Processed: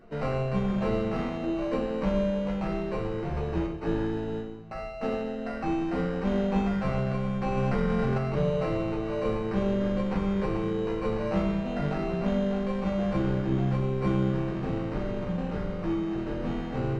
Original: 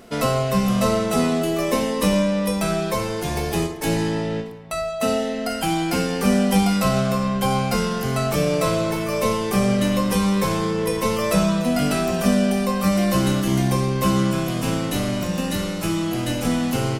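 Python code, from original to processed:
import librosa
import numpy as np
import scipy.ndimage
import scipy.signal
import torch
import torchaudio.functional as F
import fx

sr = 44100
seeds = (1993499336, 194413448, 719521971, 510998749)

y = fx.sample_hold(x, sr, seeds[0], rate_hz=3400.0, jitter_pct=0)
y = fx.spacing_loss(y, sr, db_at_10k=31)
y = y + 10.0 ** (-19.0 / 20.0) * np.pad(y, (int(430 * sr / 1000.0), 0))[:len(y)]
y = fx.room_shoebox(y, sr, seeds[1], volume_m3=31.0, walls='mixed', distance_m=0.5)
y = fx.env_flatten(y, sr, amount_pct=100, at=(7.57, 8.18))
y = y * librosa.db_to_amplitude(-9.0)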